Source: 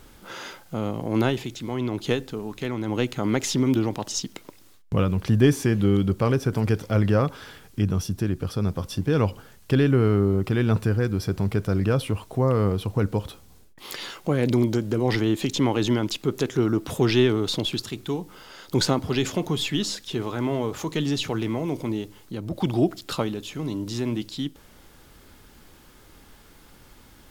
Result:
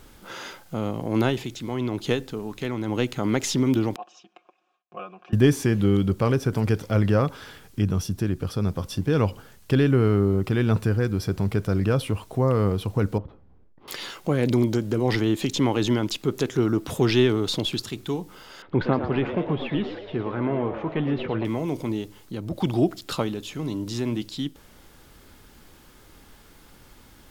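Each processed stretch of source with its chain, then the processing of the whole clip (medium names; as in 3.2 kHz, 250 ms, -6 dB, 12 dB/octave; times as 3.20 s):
3.96–5.33 s: vowel filter a + cabinet simulation 180–7200 Hz, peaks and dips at 350 Hz +3 dB, 570 Hz -5 dB, 1.7 kHz +9 dB, 4.4 kHz -6 dB + comb 5.6 ms, depth 82%
13.18–13.88 s: CVSD coder 32 kbps + Bessel low-pass 640 Hz + transformer saturation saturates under 230 Hz
18.62–21.45 s: low-pass 2.4 kHz 24 dB/octave + frequency-shifting echo 114 ms, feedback 56%, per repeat +100 Hz, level -10 dB
whole clip: none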